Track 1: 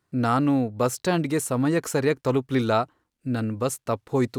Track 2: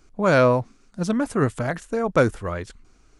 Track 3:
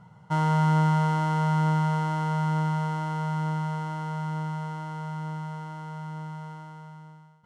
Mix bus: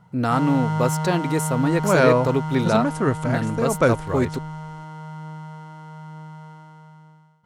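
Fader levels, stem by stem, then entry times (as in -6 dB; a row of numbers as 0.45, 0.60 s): +1.0, 0.0, -2.0 dB; 0.00, 1.65, 0.00 s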